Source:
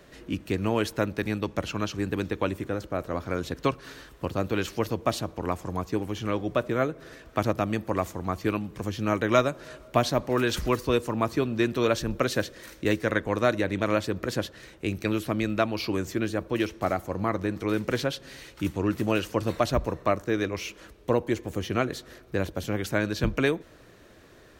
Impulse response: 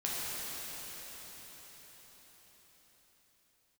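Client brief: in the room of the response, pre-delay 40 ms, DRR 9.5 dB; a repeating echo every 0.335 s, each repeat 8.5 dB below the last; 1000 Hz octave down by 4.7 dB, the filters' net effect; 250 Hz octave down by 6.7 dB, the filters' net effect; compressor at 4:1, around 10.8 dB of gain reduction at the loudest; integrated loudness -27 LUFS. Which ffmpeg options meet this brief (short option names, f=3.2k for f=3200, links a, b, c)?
-filter_complex "[0:a]equalizer=f=250:t=o:g=-9,equalizer=f=1k:t=o:g=-6,acompressor=threshold=-34dB:ratio=4,aecho=1:1:335|670|1005|1340:0.376|0.143|0.0543|0.0206,asplit=2[a][b];[1:a]atrim=start_sample=2205,adelay=40[c];[b][c]afir=irnorm=-1:irlink=0,volume=-16dB[d];[a][d]amix=inputs=2:normalize=0,volume=11dB"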